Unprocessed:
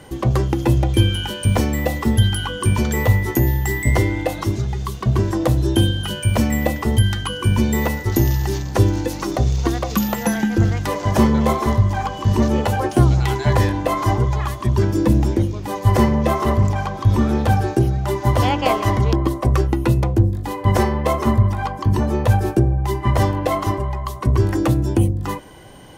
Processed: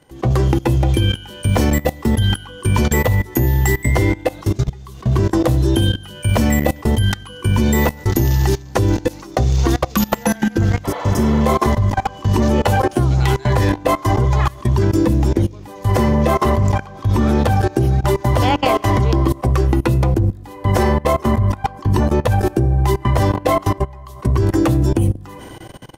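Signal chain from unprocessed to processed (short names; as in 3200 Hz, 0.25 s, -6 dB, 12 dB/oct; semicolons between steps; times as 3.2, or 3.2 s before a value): two-slope reverb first 0.56 s, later 4.4 s, from -17 dB, DRR 16.5 dB; level quantiser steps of 21 dB; spectral repair 10.87–11.36, 460–4700 Hz after; gain +7 dB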